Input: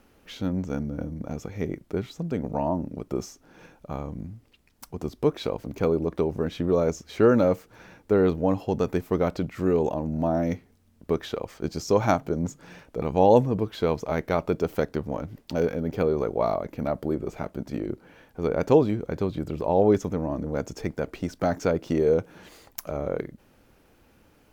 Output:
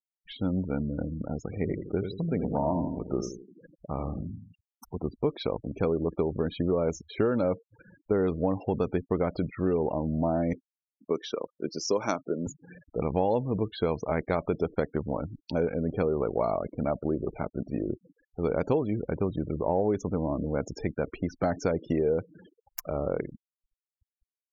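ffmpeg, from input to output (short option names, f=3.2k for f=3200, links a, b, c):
-filter_complex "[0:a]asplit=3[a][b][c];[a]afade=t=out:st=1.49:d=0.02[d];[b]asplit=2[e][f];[f]adelay=83,lowpass=f=5k:p=1,volume=-7.5dB,asplit=2[g][h];[h]adelay=83,lowpass=f=5k:p=1,volume=0.47,asplit=2[i][j];[j]adelay=83,lowpass=f=5k:p=1,volume=0.47,asplit=2[k][l];[l]adelay=83,lowpass=f=5k:p=1,volume=0.47,asplit=2[m][n];[n]adelay=83,lowpass=f=5k:p=1,volume=0.47[o];[e][g][i][k][m][o]amix=inputs=6:normalize=0,afade=t=in:st=1.49:d=0.02,afade=t=out:st=4.98:d=0.02[p];[c]afade=t=in:st=4.98:d=0.02[q];[d][p][q]amix=inputs=3:normalize=0,asettb=1/sr,asplit=3[r][s][t];[r]atrim=end=10.534[u];[s]atrim=start=10.53:end=12.47,asetpts=PTS-STARTPTS,afade=t=in:d=0.004:c=qsin,afade=t=out:st=1.936:d=0.004:c=qsin,highpass=260,equalizer=f=750:t=q:w=4:g=-8,equalizer=f=1.8k:t=q:w=4:g=-5,equalizer=f=5.7k:t=q:w=4:g=6,lowpass=f=7.2k:w=0.5412,lowpass=f=7.2k:w=1.3066[v];[t]atrim=start=12.466[w];[u][v]acrossfade=d=0.004:c1=hsin:c2=qsin[x];[x][w]acrossfade=d=0.004:c1=qsin:c2=hsin,afftfilt=real='re*gte(hypot(re,im),0.0141)':imag='im*gte(hypot(re,im),0.0141)':win_size=1024:overlap=0.75,acompressor=threshold=-22dB:ratio=6"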